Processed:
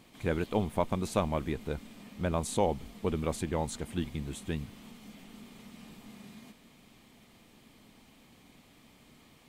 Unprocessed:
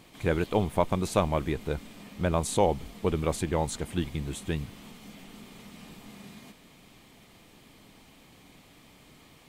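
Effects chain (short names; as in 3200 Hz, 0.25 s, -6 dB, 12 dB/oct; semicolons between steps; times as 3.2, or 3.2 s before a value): bell 230 Hz +6.5 dB 0.23 oct; gain -4.5 dB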